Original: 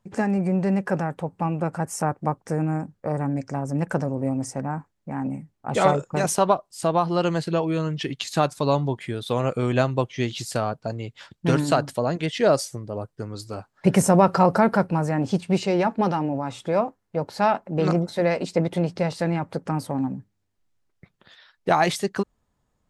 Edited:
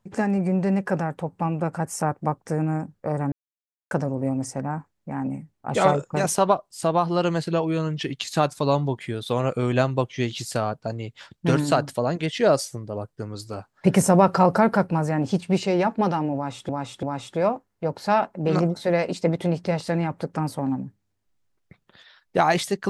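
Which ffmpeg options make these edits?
ffmpeg -i in.wav -filter_complex "[0:a]asplit=5[link_01][link_02][link_03][link_04][link_05];[link_01]atrim=end=3.32,asetpts=PTS-STARTPTS,afade=type=out:start_time=3.316:duration=0.004:curve=hsin[link_06];[link_02]atrim=start=3.32:end=3.91,asetpts=PTS-STARTPTS,volume=0[link_07];[link_03]atrim=start=3.91:end=16.692,asetpts=PTS-STARTPTS,afade=type=in:duration=0.004:curve=hsin[link_08];[link_04]atrim=start=16.348:end=16.692[link_09];[link_05]atrim=start=16.348[link_10];[link_06][link_07][link_08]concat=n=3:v=0:a=1[link_11];[link_11][link_09]acrossfade=duration=0.004:curve1=hsin:curve2=hsin[link_12];[link_12][link_10]acrossfade=duration=0.004:curve1=hsin:curve2=hsin" out.wav

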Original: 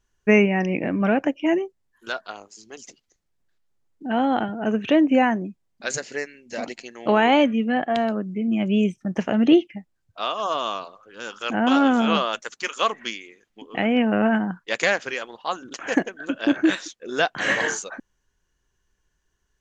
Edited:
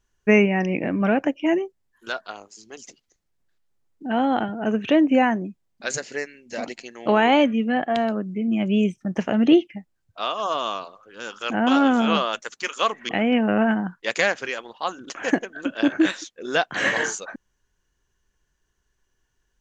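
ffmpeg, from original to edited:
ffmpeg -i in.wav -filter_complex "[0:a]asplit=2[link_01][link_02];[link_01]atrim=end=13.092[link_03];[link_02]atrim=start=13.728[link_04];[link_03][link_04]acrossfade=duration=0.004:curve1=hsin:curve2=hsin" out.wav

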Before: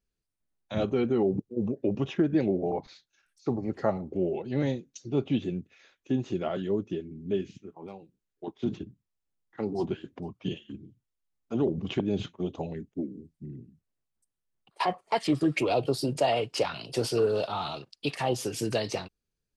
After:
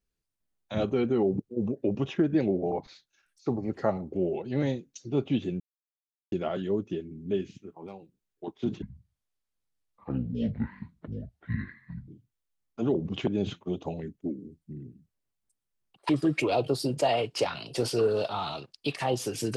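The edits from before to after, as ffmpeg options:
ffmpeg -i in.wav -filter_complex "[0:a]asplit=6[link_01][link_02][link_03][link_04][link_05][link_06];[link_01]atrim=end=5.6,asetpts=PTS-STARTPTS,afade=type=out:start_time=5.596:duration=0.004:curve=hsin[link_07];[link_02]atrim=start=5.6:end=6.32,asetpts=PTS-STARTPTS,volume=0[link_08];[link_03]atrim=start=6.32:end=8.824,asetpts=PTS-STARTPTS,afade=type=in:duration=0.004:curve=hsin[link_09];[link_04]atrim=start=8.82:end=10.81,asetpts=PTS-STARTPTS,asetrate=26901,aresample=44100,atrim=end_sample=143867,asetpts=PTS-STARTPTS[link_10];[link_05]atrim=start=10.806:end=14.822[link_11];[link_06]atrim=start=15.278[link_12];[link_07][link_08][link_09]concat=n=3:v=0:a=1[link_13];[link_13][link_10]acrossfade=duration=0.004:curve1=hsin:curve2=hsin[link_14];[link_14][link_11]acrossfade=duration=0.004:curve1=hsin:curve2=hsin[link_15];[link_15][link_12]acrossfade=duration=0.004:curve1=hsin:curve2=hsin" out.wav

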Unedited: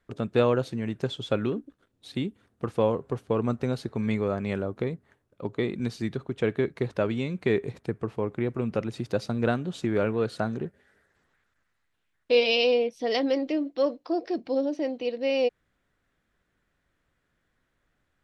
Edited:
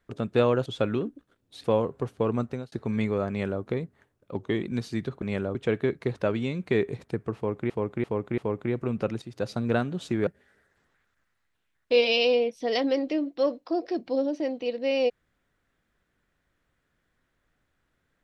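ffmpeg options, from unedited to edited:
ffmpeg -i in.wav -filter_complex "[0:a]asplit=13[link_01][link_02][link_03][link_04][link_05][link_06][link_07][link_08][link_09][link_10][link_11][link_12][link_13];[link_01]atrim=end=0.662[link_14];[link_02]atrim=start=1.168:end=2.152[link_15];[link_03]atrim=start=2.738:end=3.82,asetpts=PTS-STARTPTS,afade=type=out:start_time=0.632:duration=0.45:curve=qsin[link_16];[link_04]atrim=start=3.82:end=5.464,asetpts=PTS-STARTPTS,afade=type=in:duration=0.004:curve=hsin[link_17];[link_05]atrim=start=5.46:end=5.71,asetpts=PTS-STARTPTS,asetrate=41013,aresample=44100[link_18];[link_06]atrim=start=5.706:end=6.302[link_19];[link_07]atrim=start=4.388:end=4.722[link_20];[link_08]atrim=start=6.298:end=8.452[link_21];[link_09]atrim=start=8.108:end=8.452[link_22];[link_10]atrim=start=8.108:end=8.452[link_23];[link_11]atrim=start=8.108:end=8.95,asetpts=PTS-STARTPTS,afade=type=out:start_time=0.838:duration=0.004:curve=hsin:silence=0.237137[link_24];[link_12]atrim=start=8.95:end=10.002,asetpts=PTS-STARTPTS,afade=type=in:duration=0.34:silence=0.237137[link_25];[link_13]atrim=start=10.658[link_26];[link_14][link_15]acrossfade=duration=0.004:curve1=hsin:curve2=hsin[link_27];[link_16][link_17]concat=n=2:v=0:a=1[link_28];[link_27][link_28]acrossfade=duration=0.004:curve1=hsin:curve2=hsin[link_29];[link_29][link_18]acrossfade=duration=0.004:curve1=hsin:curve2=hsin[link_30];[link_30][link_19]acrossfade=duration=0.004:curve1=hsin:curve2=hsin[link_31];[link_31][link_20]acrossfade=duration=0.004:curve1=hsin:curve2=hsin[link_32];[link_32][link_21]acrossfade=duration=0.004:curve1=hsin:curve2=hsin[link_33];[link_33][link_22]acrossfade=duration=0.004:curve1=hsin:curve2=hsin[link_34];[link_34][link_23]acrossfade=duration=0.004:curve1=hsin:curve2=hsin[link_35];[link_24][link_25]concat=n=2:v=0:a=1[link_36];[link_35][link_36]acrossfade=duration=0.004:curve1=hsin:curve2=hsin[link_37];[link_37][link_26]acrossfade=duration=0.004:curve1=hsin:curve2=hsin" out.wav

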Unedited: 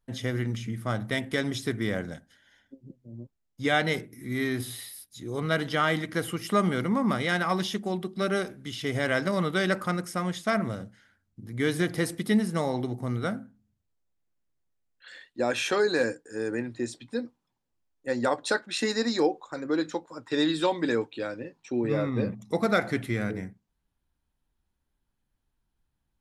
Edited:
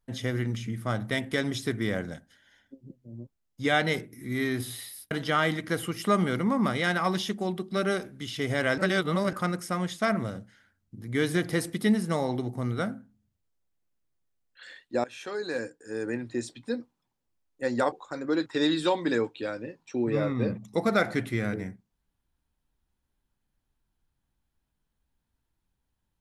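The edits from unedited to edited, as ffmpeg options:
ffmpeg -i in.wav -filter_complex "[0:a]asplit=7[link_01][link_02][link_03][link_04][link_05][link_06][link_07];[link_01]atrim=end=5.112[link_08];[link_02]atrim=start=5.558:end=9.232[link_09];[link_03]atrim=start=9.228:end=9.782,asetpts=PTS-STARTPTS,areverse[link_10];[link_04]atrim=start=9.778:end=15.49,asetpts=PTS-STARTPTS,afade=type=out:start_time=5.708:duration=0.004:curve=hsin:silence=0.0944061[link_11];[link_05]atrim=start=15.49:end=18.372,asetpts=PTS-STARTPTS,afade=type=in:duration=1.22:silence=0.0944061[link_12];[link_06]atrim=start=19.328:end=19.872[link_13];[link_07]atrim=start=20.228[link_14];[link_08][link_09]acrossfade=duration=0.004:curve1=hsin:curve2=hsin[link_15];[link_15][link_10]acrossfade=duration=0.004:curve1=hsin:curve2=hsin[link_16];[link_11][link_12]concat=n=2:v=0:a=1[link_17];[link_16][link_17]acrossfade=duration=0.004:curve1=hsin:curve2=hsin[link_18];[link_18][link_13]acrossfade=duration=0.004:curve1=hsin:curve2=hsin[link_19];[link_19][link_14]acrossfade=duration=0.004:curve1=hsin:curve2=hsin" out.wav

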